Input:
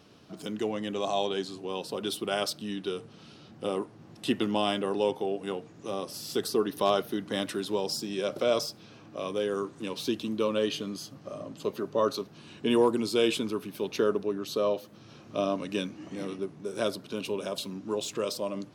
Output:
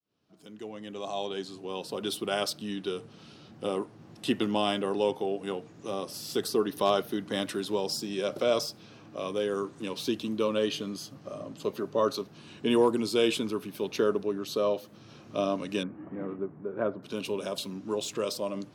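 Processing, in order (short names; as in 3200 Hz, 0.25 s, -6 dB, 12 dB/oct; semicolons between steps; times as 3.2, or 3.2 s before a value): opening faded in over 2.10 s; 15.83–17.03 LPF 1700 Hz 24 dB/oct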